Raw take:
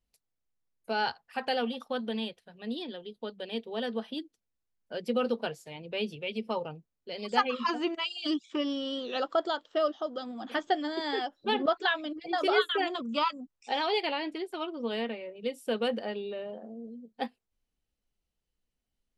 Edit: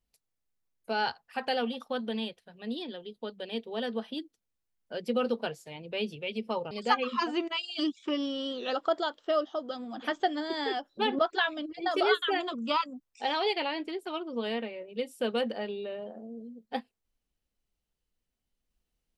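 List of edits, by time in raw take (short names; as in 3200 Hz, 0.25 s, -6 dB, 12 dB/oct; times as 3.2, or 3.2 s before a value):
6.71–7.18 cut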